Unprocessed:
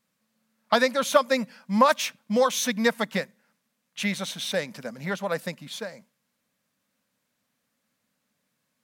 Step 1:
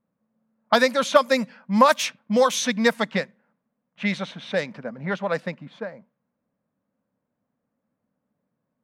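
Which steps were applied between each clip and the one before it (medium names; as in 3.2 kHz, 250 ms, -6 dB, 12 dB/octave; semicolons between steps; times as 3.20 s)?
level-controlled noise filter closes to 810 Hz, open at -18.5 dBFS; trim +3 dB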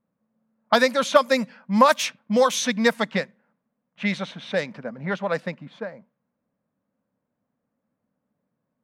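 no audible change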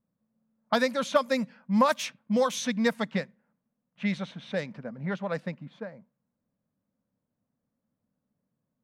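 bass shelf 190 Hz +11.5 dB; trim -8 dB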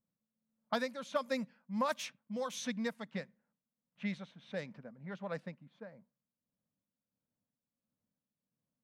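tremolo 1.5 Hz, depth 53%; trim -8.5 dB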